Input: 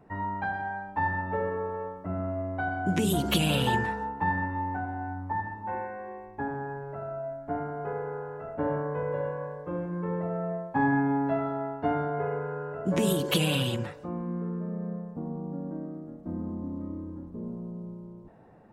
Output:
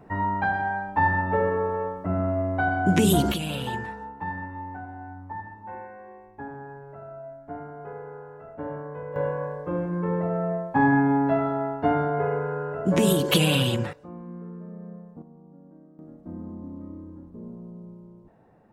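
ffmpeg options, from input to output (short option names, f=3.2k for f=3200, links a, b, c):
-af "asetnsamples=n=441:p=0,asendcmd='3.32 volume volume -5dB;9.16 volume volume 5dB;13.93 volume volume -6dB;15.22 volume volume -14.5dB;15.99 volume volume -3dB',volume=6.5dB"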